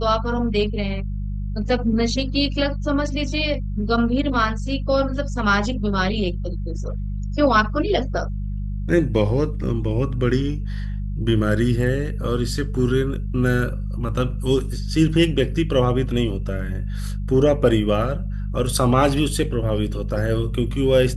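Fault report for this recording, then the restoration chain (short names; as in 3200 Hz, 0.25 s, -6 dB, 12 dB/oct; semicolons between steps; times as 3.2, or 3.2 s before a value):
hum 50 Hz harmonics 4 -26 dBFS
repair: de-hum 50 Hz, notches 4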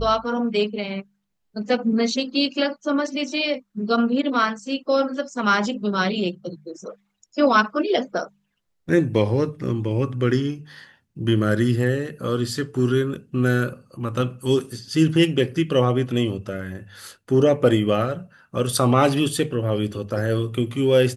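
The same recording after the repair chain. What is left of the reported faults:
none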